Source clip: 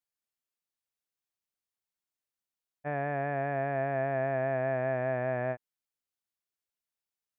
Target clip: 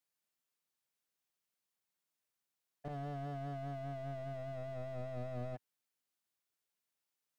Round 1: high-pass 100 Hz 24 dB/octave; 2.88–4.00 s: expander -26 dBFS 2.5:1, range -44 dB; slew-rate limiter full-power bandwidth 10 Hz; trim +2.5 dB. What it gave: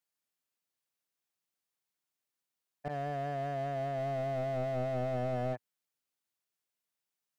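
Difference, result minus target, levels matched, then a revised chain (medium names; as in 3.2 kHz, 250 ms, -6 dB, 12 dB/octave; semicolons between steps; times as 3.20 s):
slew-rate limiter: distortion -10 dB
high-pass 100 Hz 24 dB/octave; 2.88–4.00 s: expander -26 dBFS 2.5:1, range -44 dB; slew-rate limiter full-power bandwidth 3 Hz; trim +2.5 dB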